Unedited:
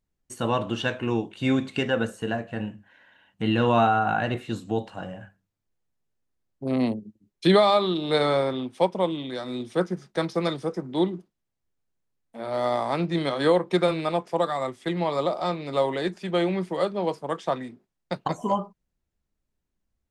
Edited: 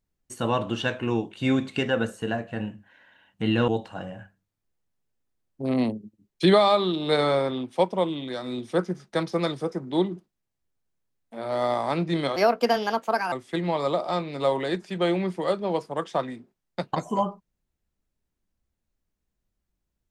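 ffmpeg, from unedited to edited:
-filter_complex "[0:a]asplit=4[s0][s1][s2][s3];[s0]atrim=end=3.682[s4];[s1]atrim=start=4.698:end=13.384[s5];[s2]atrim=start=13.38:end=14.65,asetpts=PTS-STARTPTS,asetrate=58212,aresample=44100[s6];[s3]atrim=start=14.646[s7];[s4][s5]acrossfade=d=0.004:c1=hsin:c2=hsin[s8];[s8][s6]acrossfade=d=0.004:c1=hsin:c2=hsin[s9];[s9][s7]acrossfade=d=0.004:c1=hsin:c2=hsin"

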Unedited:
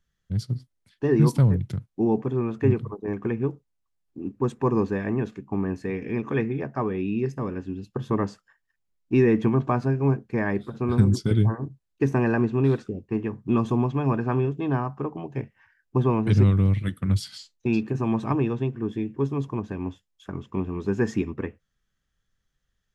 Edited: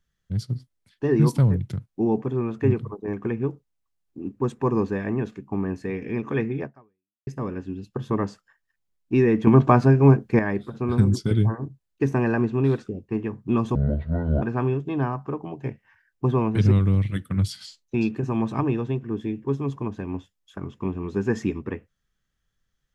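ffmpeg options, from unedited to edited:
-filter_complex "[0:a]asplit=6[s0][s1][s2][s3][s4][s5];[s0]atrim=end=7.27,asetpts=PTS-STARTPTS,afade=t=out:st=6.64:d=0.63:c=exp[s6];[s1]atrim=start=7.27:end=9.472,asetpts=PTS-STARTPTS,afade=t=in:d=0.004:c=hsin[s7];[s2]atrim=start=9.468:end=10.392,asetpts=PTS-STARTPTS,volume=2.37[s8];[s3]atrim=start=10.388:end=13.754[s9];[s4]atrim=start=13.75:end=14.14,asetpts=PTS-STARTPTS,asetrate=25578,aresample=44100,atrim=end_sample=29653,asetpts=PTS-STARTPTS[s10];[s5]atrim=start=14.136[s11];[s6][s7]concat=n=2:v=0:a=1[s12];[s12][s8]acrossfade=d=0.004:c1=hsin:c2=hsin[s13];[s13][s9]acrossfade=d=0.004:c1=hsin:c2=hsin[s14];[s14][s10]acrossfade=d=0.004:c1=hsin:c2=hsin[s15];[s15][s11]acrossfade=d=0.004:c1=hsin:c2=hsin"

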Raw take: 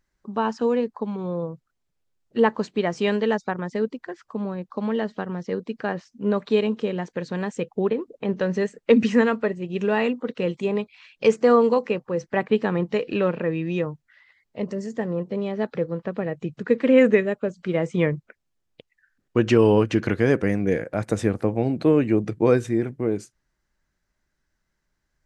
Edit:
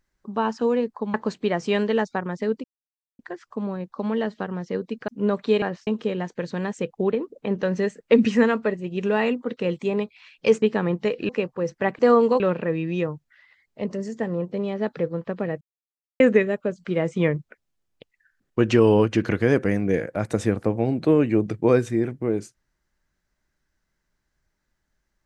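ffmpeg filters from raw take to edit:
-filter_complex "[0:a]asplit=12[s0][s1][s2][s3][s4][s5][s6][s7][s8][s9][s10][s11];[s0]atrim=end=1.142[s12];[s1]atrim=start=2.468:end=3.97,asetpts=PTS-STARTPTS,afade=t=out:st=1.498:d=0.004:c=hsin,apad=pad_dur=0.55[s13];[s2]atrim=start=3.97:end=5.862,asetpts=PTS-STARTPTS,afade=t=in:d=0.004:c=hsin[s14];[s3]atrim=start=6.108:end=6.652[s15];[s4]atrim=start=5.858:end=6.112[s16];[s5]atrim=start=6.648:end=11.402[s17];[s6]atrim=start=12.508:end=13.182[s18];[s7]atrim=start=11.808:end=12.512[s19];[s8]atrim=start=11.398:end=11.812[s20];[s9]atrim=start=13.178:end=16.39,asetpts=PTS-STARTPTS,afade=t=out:st=3.208:d=0.004:c=hsin[s21];[s10]atrim=start=16.39:end=16.98,asetpts=PTS-STARTPTS,volume=0[s22];[s11]atrim=start=16.98,asetpts=PTS-STARTPTS,afade=t=in:d=0.004:c=hsin[s23];[s13][s14]concat=n=2:v=0:a=1[s24];[s12][s24]acrossfade=d=0.004:c1=hsin:c2=hsin[s25];[s25][s15]acrossfade=d=0.004:c1=hsin:c2=hsin[s26];[s26][s16]acrossfade=d=0.004:c1=hsin:c2=hsin[s27];[s27][s17]acrossfade=d=0.004:c1=hsin:c2=hsin[s28];[s28][s18]acrossfade=d=0.004:c1=hsin:c2=hsin[s29];[s29][s19]acrossfade=d=0.004:c1=hsin:c2=hsin[s30];[s30][s20]acrossfade=d=0.004:c1=hsin:c2=hsin[s31];[s21][s22][s23]concat=n=3:v=0:a=1[s32];[s31][s32]acrossfade=d=0.004:c1=hsin:c2=hsin"

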